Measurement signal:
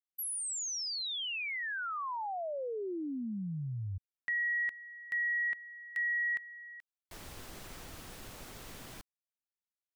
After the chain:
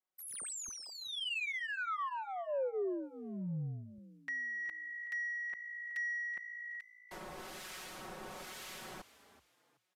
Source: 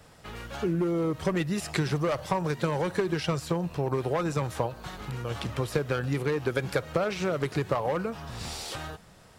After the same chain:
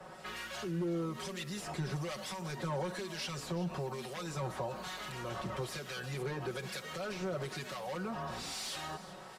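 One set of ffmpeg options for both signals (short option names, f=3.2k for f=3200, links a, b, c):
-filter_complex "[0:a]highshelf=f=4.4k:g=10.5,aecho=1:1:5.4:0.98,acrossover=split=120|3500[a][b][c];[b]acompressor=threshold=-35dB:ratio=6:attack=0.17:release=104:knee=6:detection=peak[d];[a][d][c]amix=inputs=3:normalize=0,asplit=2[e][f];[f]highpass=f=720:p=1,volume=23dB,asoftclip=type=tanh:threshold=-12.5dB[g];[e][g]amix=inputs=2:normalize=0,lowpass=f=1k:p=1,volume=-6dB,acrossover=split=1500[h][i];[h]aeval=exprs='val(0)*(1-0.7/2+0.7/2*cos(2*PI*1.1*n/s))':c=same[j];[i]aeval=exprs='val(0)*(1-0.7/2-0.7/2*cos(2*PI*1.1*n/s))':c=same[k];[j][k]amix=inputs=2:normalize=0,asplit=2[l][m];[m]asplit=3[n][o][p];[n]adelay=376,afreqshift=56,volume=-16dB[q];[o]adelay=752,afreqshift=112,volume=-25.9dB[r];[p]adelay=1128,afreqshift=168,volume=-35.8dB[s];[q][r][s]amix=inputs=3:normalize=0[t];[l][t]amix=inputs=2:normalize=0,aresample=32000,aresample=44100,volume=-6.5dB"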